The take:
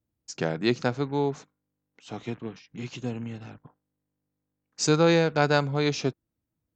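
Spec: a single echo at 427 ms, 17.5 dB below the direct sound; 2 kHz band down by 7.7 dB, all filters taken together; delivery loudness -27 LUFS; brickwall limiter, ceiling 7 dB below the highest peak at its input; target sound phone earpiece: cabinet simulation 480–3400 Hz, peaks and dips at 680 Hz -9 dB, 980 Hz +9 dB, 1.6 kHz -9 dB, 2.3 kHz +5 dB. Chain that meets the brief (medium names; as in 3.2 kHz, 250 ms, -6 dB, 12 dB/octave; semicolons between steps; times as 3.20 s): peaking EQ 2 kHz -8.5 dB; peak limiter -16 dBFS; cabinet simulation 480–3400 Hz, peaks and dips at 680 Hz -9 dB, 980 Hz +9 dB, 1.6 kHz -9 dB, 2.3 kHz +5 dB; delay 427 ms -17.5 dB; trim +8.5 dB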